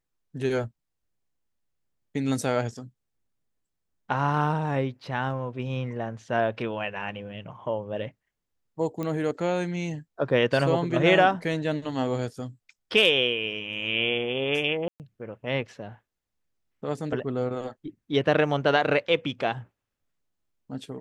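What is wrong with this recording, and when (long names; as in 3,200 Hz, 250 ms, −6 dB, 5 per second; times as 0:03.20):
0:09.03: click −19 dBFS
0:14.88–0:15.00: drop-out 118 ms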